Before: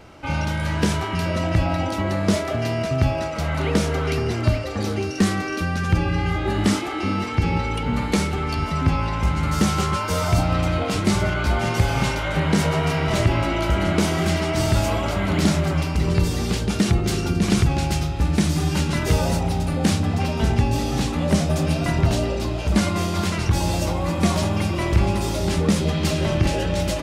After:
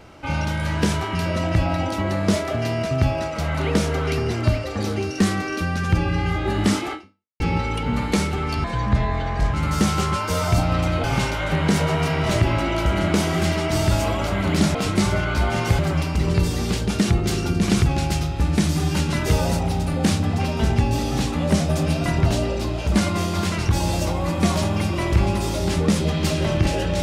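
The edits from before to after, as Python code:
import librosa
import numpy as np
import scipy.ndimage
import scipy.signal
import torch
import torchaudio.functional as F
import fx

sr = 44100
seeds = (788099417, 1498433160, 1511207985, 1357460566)

y = fx.edit(x, sr, fx.fade_out_span(start_s=6.93, length_s=0.47, curve='exp'),
    fx.speed_span(start_s=8.64, length_s=0.7, speed=0.78),
    fx.move(start_s=10.84, length_s=1.04, to_s=15.59), tone=tone)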